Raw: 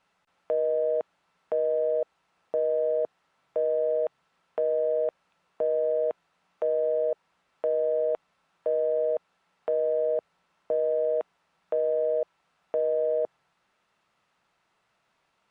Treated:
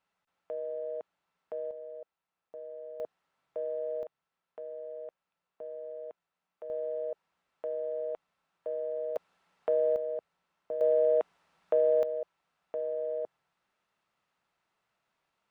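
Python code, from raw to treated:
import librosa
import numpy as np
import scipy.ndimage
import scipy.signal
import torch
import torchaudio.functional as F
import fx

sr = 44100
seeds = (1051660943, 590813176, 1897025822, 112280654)

y = fx.gain(x, sr, db=fx.steps((0.0, -11.0), (1.71, -18.0), (3.0, -9.0), (4.03, -16.0), (6.7, -9.0), (9.16, -1.0), (9.96, -8.5), (10.81, 1.0), (12.03, -8.0)))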